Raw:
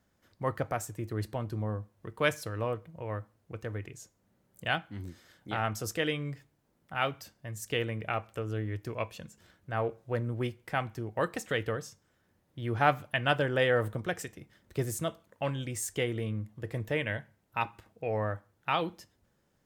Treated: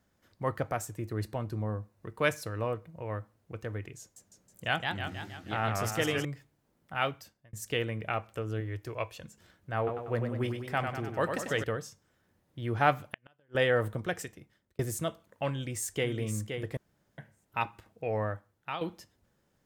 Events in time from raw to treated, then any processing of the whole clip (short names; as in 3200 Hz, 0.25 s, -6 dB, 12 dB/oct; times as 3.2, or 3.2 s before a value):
0.99–3.1 notch 3200 Hz
4–6.25 warbling echo 0.159 s, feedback 58%, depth 198 cents, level -3.5 dB
7.08–7.53 fade out
8.6–9.24 bell 200 Hz -13 dB 0.57 oct
9.77–11.64 warbling echo 97 ms, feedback 57%, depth 83 cents, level -6 dB
13.04–13.55 flipped gate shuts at -19 dBFS, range -41 dB
14.21–14.79 fade out
15.51–16.11 echo throw 0.52 s, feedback 15%, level -6.5 dB
16.77–17.18 room tone
18.21–18.81 fade out, to -9.5 dB